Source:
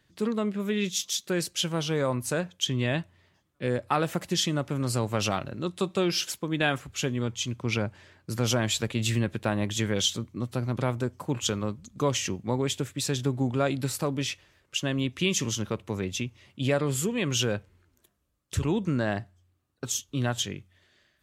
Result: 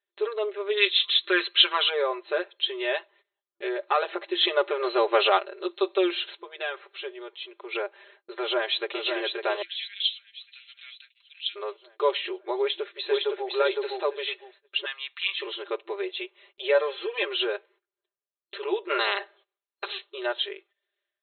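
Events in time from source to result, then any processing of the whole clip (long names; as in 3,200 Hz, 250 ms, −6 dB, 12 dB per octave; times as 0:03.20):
0:00.77–0:01.90: gain on a spectral selection 990–8,900 Hz +10 dB
0:04.41–0:05.38: clip gain +6.5 dB
0:06.39–0:07.75: downward compressor 1.5 to 1, threshold −43 dBFS
0:08.38–0:09.03: delay throw 550 ms, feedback 55%, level −5 dB
0:09.62–0:11.56: inverse Chebyshev high-pass filter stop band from 960 Hz, stop band 50 dB
0:12.59–0:13.49: delay throw 510 ms, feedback 20%, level −2 dB
0:14.85–0:15.42: high-pass filter 1,100 Hz 24 dB per octave
0:16.74–0:17.27: comb filter 3.8 ms
0:18.89–0:20.08: ceiling on every frequency bin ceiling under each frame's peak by 27 dB
whole clip: brick-wall band-pass 340–4,200 Hz; noise gate −58 dBFS, range −21 dB; comb filter 5 ms, depth 90%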